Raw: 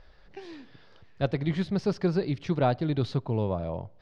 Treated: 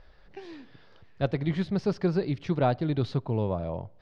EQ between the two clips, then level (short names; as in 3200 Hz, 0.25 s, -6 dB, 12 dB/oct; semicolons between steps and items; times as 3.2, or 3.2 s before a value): high shelf 5600 Hz -5.5 dB; 0.0 dB